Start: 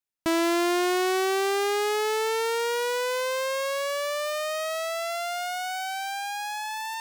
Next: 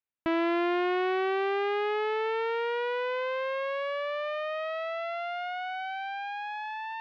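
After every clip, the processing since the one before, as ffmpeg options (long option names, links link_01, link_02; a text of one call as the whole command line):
ffmpeg -i in.wav -af "lowpass=frequency=3000:width=0.5412,lowpass=frequency=3000:width=1.3066,volume=-3dB" out.wav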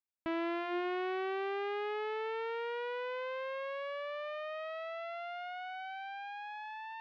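ffmpeg -i in.wav -af "bandreject=frequency=173.1:width_type=h:width=4,bandreject=frequency=346.2:width_type=h:width=4,volume=-8dB" out.wav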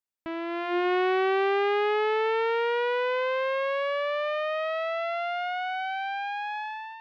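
ffmpeg -i in.wav -af "dynaudnorm=framelen=470:gausssize=3:maxgain=12dB" out.wav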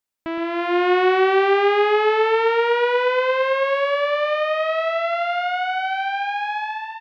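ffmpeg -i in.wav -af "aecho=1:1:117|234|351:0.376|0.094|0.0235,volume=7dB" out.wav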